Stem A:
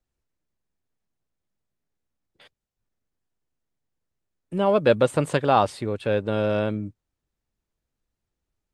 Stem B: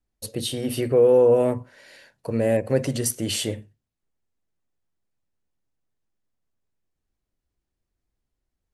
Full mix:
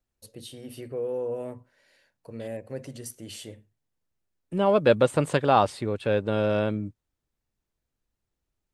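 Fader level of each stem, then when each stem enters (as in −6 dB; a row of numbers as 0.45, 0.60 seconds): −1.0, −14.5 decibels; 0.00, 0.00 seconds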